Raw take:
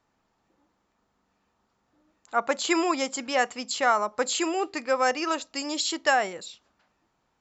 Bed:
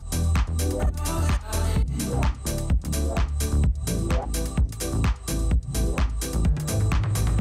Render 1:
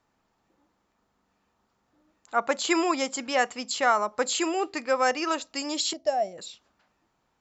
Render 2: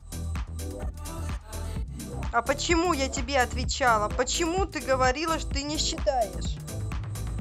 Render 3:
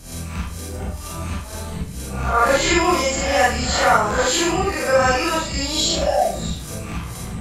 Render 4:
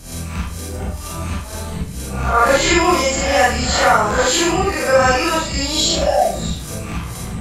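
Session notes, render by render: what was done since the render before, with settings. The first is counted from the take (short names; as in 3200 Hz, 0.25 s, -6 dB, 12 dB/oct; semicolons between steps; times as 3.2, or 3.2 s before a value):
5.93–6.38 EQ curve 120 Hz 0 dB, 450 Hz -10 dB, 660 Hz +6 dB, 950 Hz -20 dB, 1400 Hz -22 dB, 2600 Hz -17 dB, 3700 Hz -16 dB, 5700 Hz -6 dB, 9600 Hz -25 dB
add bed -10 dB
spectral swells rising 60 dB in 0.63 s; Schroeder reverb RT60 0.39 s, combs from 32 ms, DRR -4 dB
gain +3 dB; limiter -2 dBFS, peak gain reduction 2 dB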